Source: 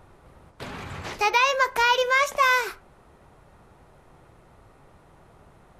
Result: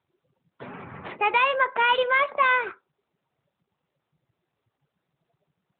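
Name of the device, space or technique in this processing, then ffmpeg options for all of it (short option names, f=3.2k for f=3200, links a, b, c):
mobile call with aggressive noise cancelling: -af "highpass=130,afftdn=nr=28:nf=-40" -ar 8000 -c:a libopencore_amrnb -b:a 12200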